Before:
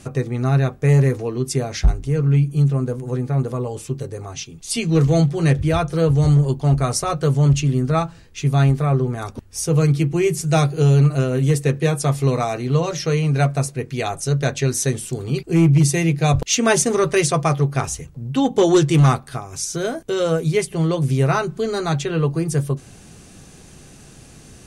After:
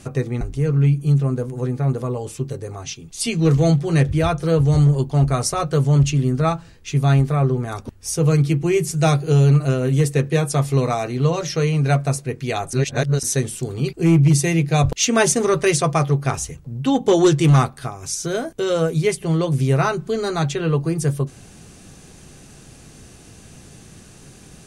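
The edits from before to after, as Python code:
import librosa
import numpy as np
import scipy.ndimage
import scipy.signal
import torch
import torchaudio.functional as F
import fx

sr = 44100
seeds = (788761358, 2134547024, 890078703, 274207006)

y = fx.edit(x, sr, fx.cut(start_s=0.41, length_s=1.5),
    fx.reverse_span(start_s=14.23, length_s=0.5), tone=tone)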